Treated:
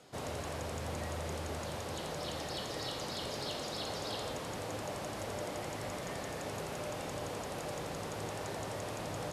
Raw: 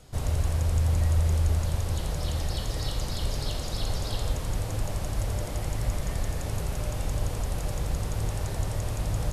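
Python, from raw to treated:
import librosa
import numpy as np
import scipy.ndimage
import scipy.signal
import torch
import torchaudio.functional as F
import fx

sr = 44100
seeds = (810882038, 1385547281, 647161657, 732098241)

p1 = scipy.signal.sosfilt(scipy.signal.butter(2, 250.0, 'highpass', fs=sr, output='sos'), x)
p2 = fx.high_shelf(p1, sr, hz=6900.0, db=-10.5)
p3 = 10.0 ** (-33.0 / 20.0) * np.tanh(p2 / 10.0 ** (-33.0 / 20.0))
p4 = p2 + (p3 * librosa.db_to_amplitude(-7.0))
y = p4 * librosa.db_to_amplitude(-3.5)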